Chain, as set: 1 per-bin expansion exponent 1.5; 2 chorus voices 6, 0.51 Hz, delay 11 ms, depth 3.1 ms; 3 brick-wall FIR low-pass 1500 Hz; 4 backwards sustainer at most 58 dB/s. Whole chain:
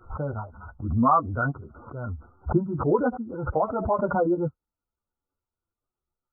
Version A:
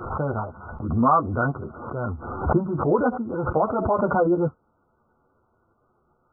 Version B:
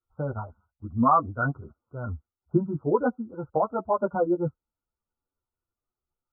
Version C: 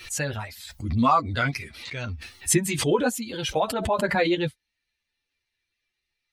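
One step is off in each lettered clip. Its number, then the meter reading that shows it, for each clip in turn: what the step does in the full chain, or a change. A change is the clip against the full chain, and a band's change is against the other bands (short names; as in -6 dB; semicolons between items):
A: 1, momentary loudness spread change -4 LU; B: 4, momentary loudness spread change +2 LU; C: 3, momentary loudness spread change -2 LU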